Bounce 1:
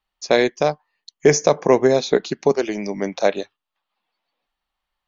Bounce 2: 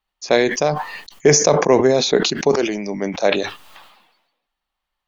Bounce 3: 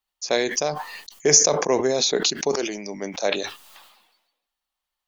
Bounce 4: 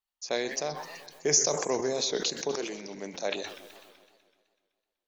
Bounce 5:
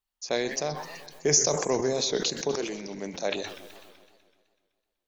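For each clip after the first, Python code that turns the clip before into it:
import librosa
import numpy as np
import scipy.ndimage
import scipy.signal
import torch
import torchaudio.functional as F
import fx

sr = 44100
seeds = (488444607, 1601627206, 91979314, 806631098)

y1 = fx.sustainer(x, sr, db_per_s=56.0)
y2 = fx.bass_treble(y1, sr, bass_db=-5, treble_db=10)
y2 = y2 * 10.0 ** (-6.5 / 20.0)
y3 = fx.echo_warbled(y2, sr, ms=126, feedback_pct=64, rate_hz=2.8, cents=198, wet_db=-14.0)
y3 = y3 * 10.0 ** (-8.5 / 20.0)
y4 = fx.low_shelf(y3, sr, hz=150.0, db=11.0)
y4 = y4 * 10.0 ** (1.5 / 20.0)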